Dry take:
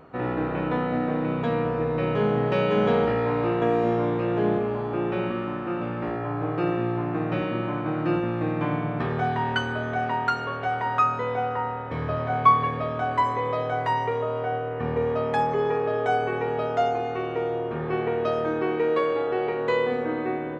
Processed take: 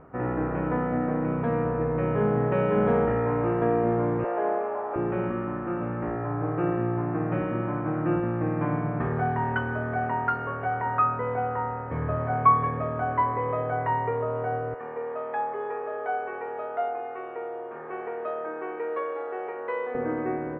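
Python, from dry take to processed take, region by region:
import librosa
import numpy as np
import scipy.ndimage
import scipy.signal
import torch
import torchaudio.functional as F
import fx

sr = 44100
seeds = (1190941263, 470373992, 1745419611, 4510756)

y = fx.chain(x, sr, fx.highpass_res(hz=630.0, q=1.9),
    fx.notch(hz=3800.0, q=6.5), at=(4.24, 4.96))
y = fx.chain(y, sr, fx.highpass(hz=580.0, slope=12),
    fx.peak_eq(hz=1500.0, db=-3.0, octaves=2.9), at=(14.74, 19.95))
y = scipy.signal.sosfilt(scipy.signal.butter(4, 2000.0, 'lowpass', fs=sr, output='sos'), y)
y = fx.low_shelf(y, sr, hz=62.0, db=11.0)
y = y * 10.0 ** (-1.5 / 20.0)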